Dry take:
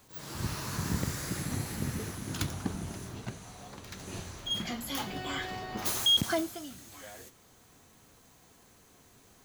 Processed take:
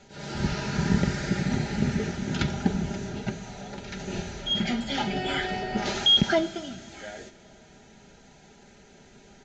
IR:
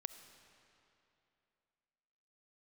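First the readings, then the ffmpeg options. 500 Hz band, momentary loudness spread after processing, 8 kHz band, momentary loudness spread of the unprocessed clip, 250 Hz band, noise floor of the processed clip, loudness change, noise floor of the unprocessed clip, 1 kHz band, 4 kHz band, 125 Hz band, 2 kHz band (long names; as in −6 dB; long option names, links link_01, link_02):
+9.0 dB, 18 LU, −3.0 dB, 20 LU, +9.5 dB, −54 dBFS, +6.0 dB, −60 dBFS, +7.0 dB, +5.5 dB, +7.0 dB, +7.5 dB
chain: -filter_complex "[0:a]acrossover=split=5800[link_01][link_02];[link_02]acompressor=threshold=-47dB:ratio=4:attack=1:release=60[link_03];[link_01][link_03]amix=inputs=2:normalize=0,asuperstop=centerf=1100:order=8:qfactor=4.1,aemphasis=mode=reproduction:type=cd,aecho=1:1:5:0.57,aresample=16000,aresample=44100,asplit=2[link_04][link_05];[1:a]atrim=start_sample=2205[link_06];[link_05][link_06]afir=irnorm=-1:irlink=0,volume=-1.5dB[link_07];[link_04][link_07]amix=inputs=2:normalize=0,volume=4dB"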